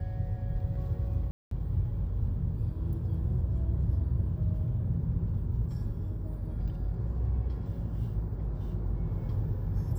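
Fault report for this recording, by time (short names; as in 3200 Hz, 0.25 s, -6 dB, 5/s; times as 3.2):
1.31–1.51 gap 0.203 s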